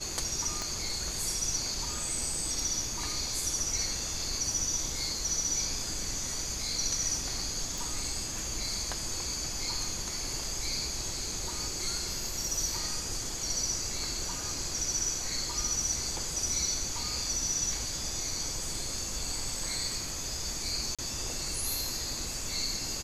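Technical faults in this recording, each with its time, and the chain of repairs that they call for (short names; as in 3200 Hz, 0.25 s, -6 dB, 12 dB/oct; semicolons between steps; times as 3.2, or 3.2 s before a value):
0.62 pop -20 dBFS
7.78 pop
20.95–20.99 gap 36 ms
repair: de-click; interpolate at 20.95, 36 ms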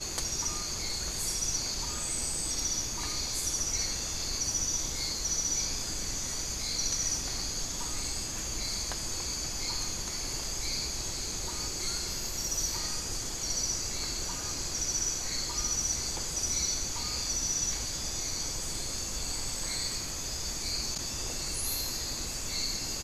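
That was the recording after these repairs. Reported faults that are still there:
0.62 pop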